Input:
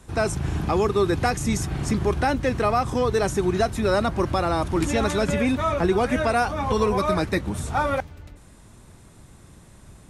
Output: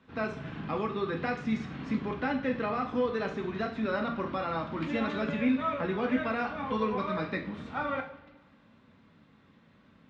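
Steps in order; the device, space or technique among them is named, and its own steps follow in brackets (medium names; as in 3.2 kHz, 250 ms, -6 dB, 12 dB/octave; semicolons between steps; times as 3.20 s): kitchen radio (cabinet simulation 170–3600 Hz, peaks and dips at 260 Hz +5 dB, 370 Hz -8 dB, 760 Hz -8 dB); two-slope reverb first 0.48 s, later 1.7 s, from -18 dB, DRR 1.5 dB; trim -8.5 dB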